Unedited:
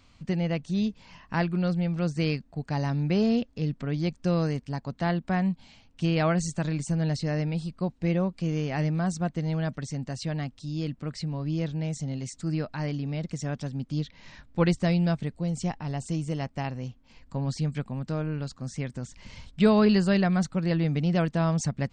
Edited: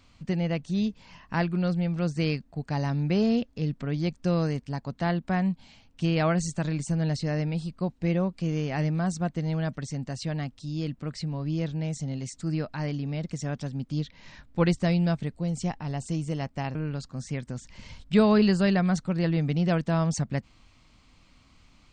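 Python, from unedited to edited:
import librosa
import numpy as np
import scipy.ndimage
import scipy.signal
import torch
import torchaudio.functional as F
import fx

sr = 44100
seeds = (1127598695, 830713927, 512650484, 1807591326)

y = fx.edit(x, sr, fx.cut(start_s=16.75, length_s=1.47), tone=tone)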